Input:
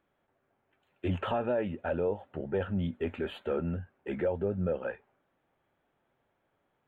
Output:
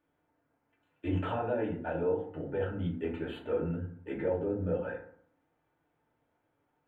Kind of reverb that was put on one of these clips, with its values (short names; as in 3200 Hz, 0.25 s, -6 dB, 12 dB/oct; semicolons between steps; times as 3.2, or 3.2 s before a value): FDN reverb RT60 0.57 s, low-frequency decay 1.25×, high-frequency decay 0.45×, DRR -3.5 dB; gain -7 dB